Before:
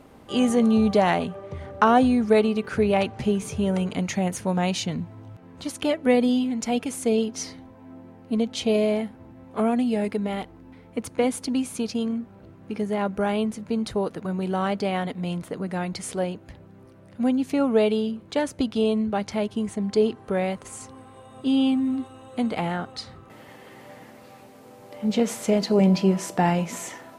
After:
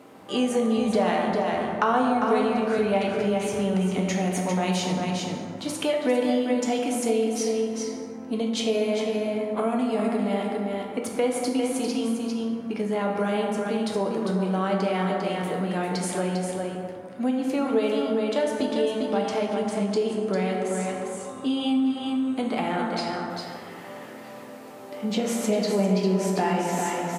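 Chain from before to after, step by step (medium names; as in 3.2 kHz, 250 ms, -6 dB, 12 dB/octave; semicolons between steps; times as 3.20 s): high-pass 200 Hz 12 dB/octave; delay 400 ms -6 dB; plate-style reverb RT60 1.9 s, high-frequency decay 0.45×, DRR 0 dB; compression 2:1, threshold -26 dBFS, peak gain reduction 8.5 dB; trim +1.5 dB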